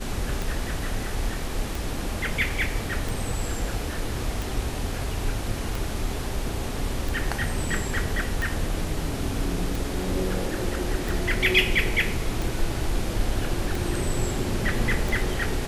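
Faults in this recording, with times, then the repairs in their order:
scratch tick 45 rpm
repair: click removal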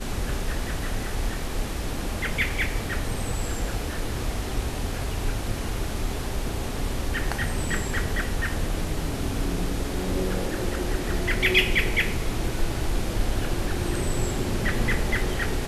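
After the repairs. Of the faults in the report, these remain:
none of them is left

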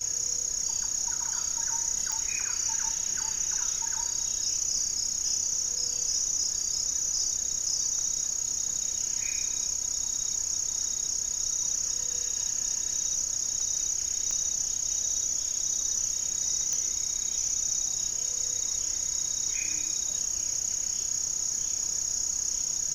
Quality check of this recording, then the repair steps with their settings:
0:02.12: click −16 dBFS
0:14.31: click −19 dBFS
0:16.73: click −17 dBFS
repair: click removal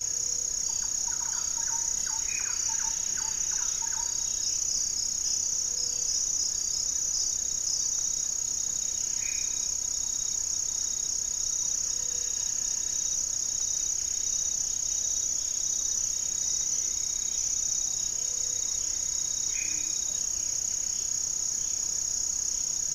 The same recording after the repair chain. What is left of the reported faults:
none of them is left

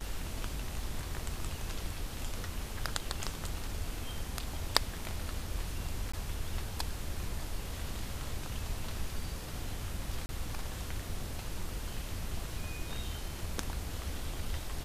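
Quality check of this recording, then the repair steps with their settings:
0:06.12–0:06.13: drop-out 15 ms
0:10.26–0:10.29: drop-out 30 ms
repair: repair the gap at 0:06.12, 15 ms
repair the gap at 0:10.26, 30 ms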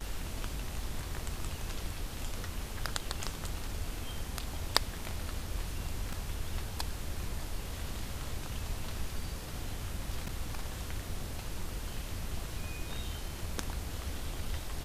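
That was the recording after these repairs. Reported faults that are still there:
none of them is left

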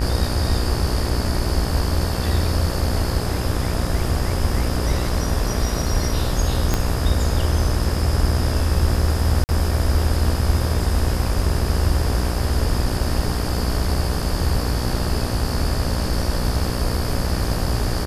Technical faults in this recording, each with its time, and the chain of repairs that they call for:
mains buzz 60 Hz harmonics 31 −25 dBFS
0:06.74: click −5 dBFS
0:09.44–0:09.49: drop-out 49 ms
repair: click removal
hum removal 60 Hz, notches 31
repair the gap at 0:09.44, 49 ms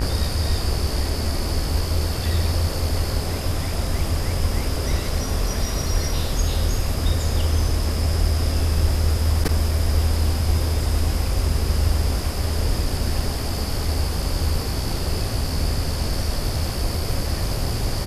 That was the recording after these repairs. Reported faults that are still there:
0:06.74: click

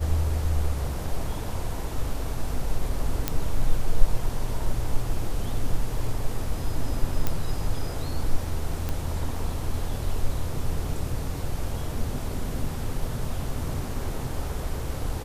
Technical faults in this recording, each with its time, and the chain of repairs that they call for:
0:03.28: click −8 dBFS
0:07.27: click −10 dBFS
0:08.89: click −15 dBFS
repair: click removal

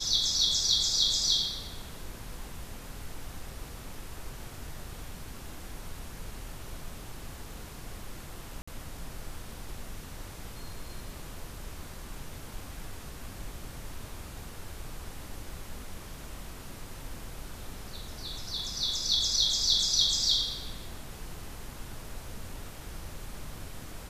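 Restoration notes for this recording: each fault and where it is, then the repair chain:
0:08.62–0:08.68: drop-out 55 ms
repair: repair the gap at 0:08.62, 55 ms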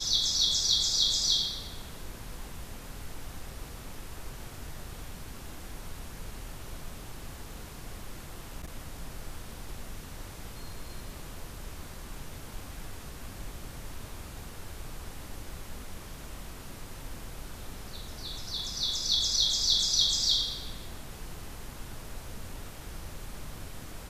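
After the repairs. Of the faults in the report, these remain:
none of them is left

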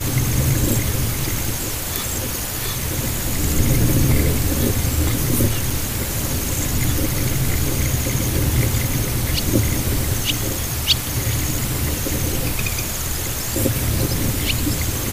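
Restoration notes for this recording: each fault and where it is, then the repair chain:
0:05.70: drop-out 3.1 ms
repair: repair the gap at 0:05.70, 3.1 ms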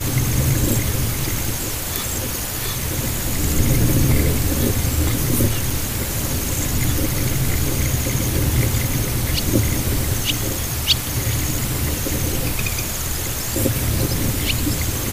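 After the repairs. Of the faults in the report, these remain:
none of them is left

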